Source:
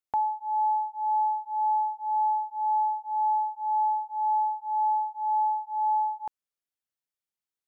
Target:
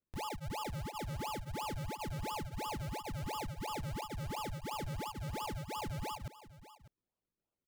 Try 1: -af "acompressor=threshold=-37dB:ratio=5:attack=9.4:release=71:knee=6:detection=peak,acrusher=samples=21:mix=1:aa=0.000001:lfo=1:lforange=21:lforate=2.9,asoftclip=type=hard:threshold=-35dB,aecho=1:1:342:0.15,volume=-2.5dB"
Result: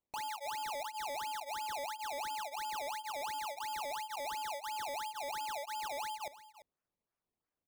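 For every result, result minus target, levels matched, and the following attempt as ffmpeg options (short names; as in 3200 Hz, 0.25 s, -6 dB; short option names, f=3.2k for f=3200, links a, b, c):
decimation with a swept rate: distortion -24 dB; echo 0.256 s early
-af "acompressor=threshold=-37dB:ratio=5:attack=9.4:release=71:knee=6:detection=peak,acrusher=samples=42:mix=1:aa=0.000001:lfo=1:lforange=42:lforate=2.9,asoftclip=type=hard:threshold=-35dB,aecho=1:1:342:0.15,volume=-2.5dB"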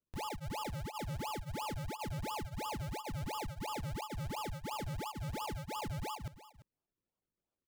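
echo 0.256 s early
-af "acompressor=threshold=-37dB:ratio=5:attack=9.4:release=71:knee=6:detection=peak,acrusher=samples=42:mix=1:aa=0.000001:lfo=1:lforange=42:lforate=2.9,asoftclip=type=hard:threshold=-35dB,aecho=1:1:598:0.15,volume=-2.5dB"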